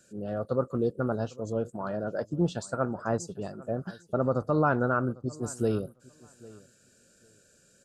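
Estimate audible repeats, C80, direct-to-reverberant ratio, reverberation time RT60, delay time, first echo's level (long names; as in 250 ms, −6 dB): 1, no reverb audible, no reverb audible, no reverb audible, 801 ms, −21.5 dB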